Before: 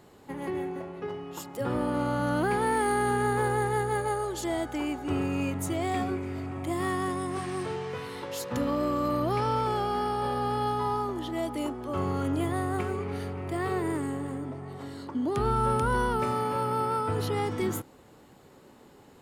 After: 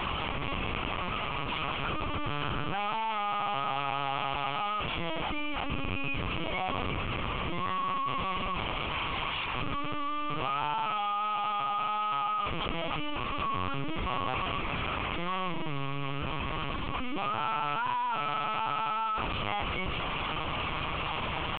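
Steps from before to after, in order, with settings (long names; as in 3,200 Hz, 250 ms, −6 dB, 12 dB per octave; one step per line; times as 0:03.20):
linear delta modulator 32 kbit/s, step −30 dBFS
spectral tilt +2.5 dB per octave
comb filter 6.4 ms, depth 41%
in parallel at +1 dB: brickwall limiter −23.5 dBFS, peak gain reduction 7.5 dB
on the sum: gain into a clipping stage and back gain 27 dB
tempo change 0.89×
phaser with its sweep stopped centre 2,600 Hz, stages 8
on a send: backwards echo 145 ms −22.5 dB
on the sum: linear-prediction vocoder at 8 kHz pitch kept
envelope flattener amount 50%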